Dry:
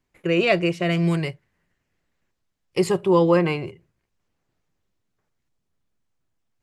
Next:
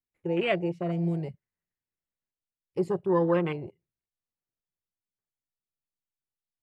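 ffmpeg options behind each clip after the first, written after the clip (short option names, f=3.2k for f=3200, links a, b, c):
-af "afwtdn=0.0501,volume=-7dB"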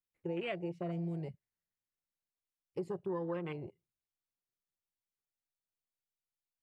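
-af "acompressor=threshold=-29dB:ratio=6,volume=-5.5dB"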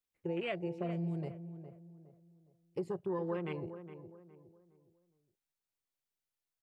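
-filter_complex "[0:a]asplit=2[a][b];[b]adelay=413,lowpass=f=1.3k:p=1,volume=-10.5dB,asplit=2[c][d];[d]adelay=413,lowpass=f=1.3k:p=1,volume=0.37,asplit=2[e][f];[f]adelay=413,lowpass=f=1.3k:p=1,volume=0.37,asplit=2[g][h];[h]adelay=413,lowpass=f=1.3k:p=1,volume=0.37[i];[a][c][e][g][i]amix=inputs=5:normalize=0,volume=1dB"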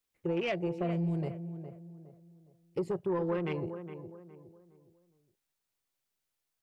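-af "asoftclip=type=tanh:threshold=-29dB,volume=6dB"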